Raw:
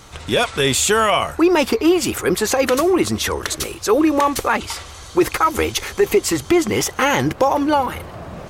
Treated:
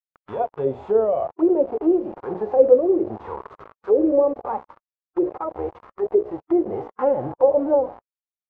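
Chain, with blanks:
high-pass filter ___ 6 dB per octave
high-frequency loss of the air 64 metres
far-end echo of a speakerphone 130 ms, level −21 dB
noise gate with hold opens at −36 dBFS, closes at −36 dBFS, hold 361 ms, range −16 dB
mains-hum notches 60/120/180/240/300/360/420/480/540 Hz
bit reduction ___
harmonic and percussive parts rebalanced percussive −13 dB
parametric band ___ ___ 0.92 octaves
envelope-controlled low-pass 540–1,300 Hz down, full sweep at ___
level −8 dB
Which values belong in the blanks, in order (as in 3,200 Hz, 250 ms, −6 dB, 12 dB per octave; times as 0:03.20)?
91 Hz, 4 bits, 490 Hz, +4 dB, −12.5 dBFS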